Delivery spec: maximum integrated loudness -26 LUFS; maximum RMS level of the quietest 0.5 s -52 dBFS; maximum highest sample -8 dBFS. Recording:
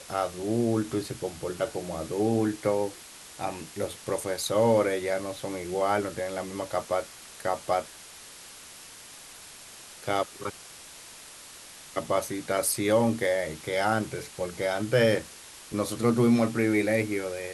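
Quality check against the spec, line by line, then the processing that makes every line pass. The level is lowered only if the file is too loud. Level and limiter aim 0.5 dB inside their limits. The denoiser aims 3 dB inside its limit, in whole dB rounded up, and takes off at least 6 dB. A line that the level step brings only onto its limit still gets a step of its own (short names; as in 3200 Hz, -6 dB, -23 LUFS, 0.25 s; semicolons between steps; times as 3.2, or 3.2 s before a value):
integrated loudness -28.0 LUFS: OK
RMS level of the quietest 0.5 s -47 dBFS: fail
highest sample -11.0 dBFS: OK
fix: denoiser 8 dB, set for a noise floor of -47 dBFS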